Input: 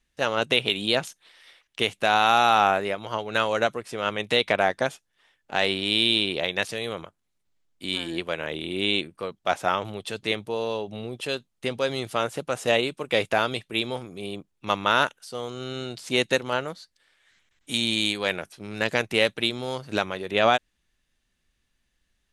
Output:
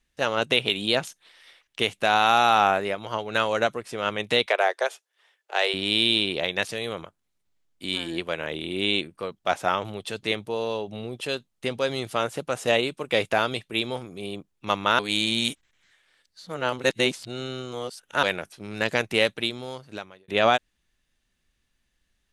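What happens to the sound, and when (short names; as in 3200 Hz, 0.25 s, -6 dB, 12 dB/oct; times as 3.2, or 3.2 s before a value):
4.46–5.74 steep high-pass 370 Hz 48 dB/oct
14.99–18.23 reverse
19.21–20.28 fade out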